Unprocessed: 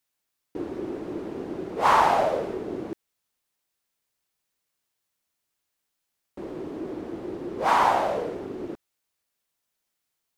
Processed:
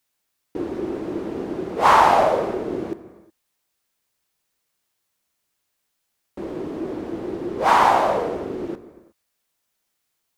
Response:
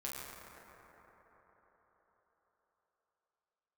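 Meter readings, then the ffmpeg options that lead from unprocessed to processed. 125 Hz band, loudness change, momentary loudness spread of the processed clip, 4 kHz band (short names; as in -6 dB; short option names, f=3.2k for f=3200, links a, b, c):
+5.0 dB, +5.0 dB, 18 LU, +5.0 dB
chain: -filter_complex "[0:a]asplit=2[a][b];[1:a]atrim=start_sample=2205,afade=t=out:st=0.42:d=0.01,atrim=end_sample=18963[c];[b][c]afir=irnorm=-1:irlink=0,volume=-9dB[d];[a][d]amix=inputs=2:normalize=0,volume=3.5dB"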